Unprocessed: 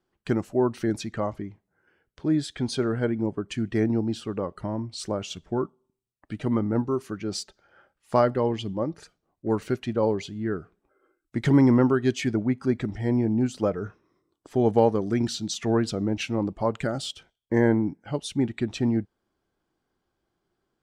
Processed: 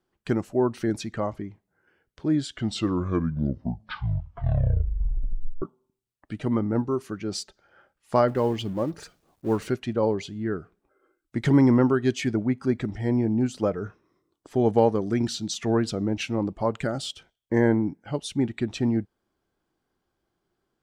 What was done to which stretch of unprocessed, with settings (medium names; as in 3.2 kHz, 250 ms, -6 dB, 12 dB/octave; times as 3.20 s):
2.29 s: tape stop 3.33 s
8.28–9.70 s: companding laws mixed up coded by mu